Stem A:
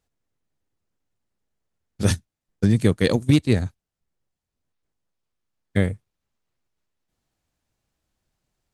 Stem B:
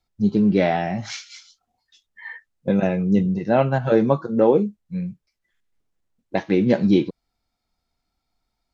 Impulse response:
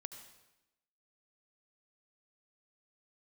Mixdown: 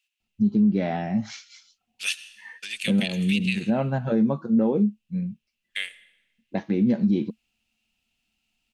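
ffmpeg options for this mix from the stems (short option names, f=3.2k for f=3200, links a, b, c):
-filter_complex "[0:a]highpass=f=2.7k:t=q:w=8.7,volume=-3dB,asplit=2[a][b];[b]volume=-4.5dB[c];[1:a]equalizer=f=220:w=4.6:g=12,adelay=200,volume=-7.5dB[d];[2:a]atrim=start_sample=2205[e];[c][e]afir=irnorm=-1:irlink=0[f];[a][d][f]amix=inputs=3:normalize=0,equalizer=f=150:t=o:w=2.2:g=3.5,alimiter=limit=-13.5dB:level=0:latency=1:release=157"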